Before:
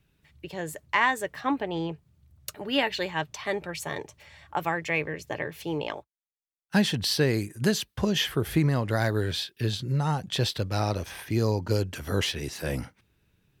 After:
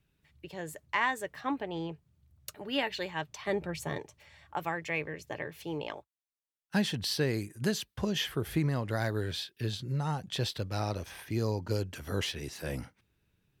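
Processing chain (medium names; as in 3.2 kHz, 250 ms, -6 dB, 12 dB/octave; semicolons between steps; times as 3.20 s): 3.47–3.98 s: bass shelf 460 Hz +9.5 dB; trim -6 dB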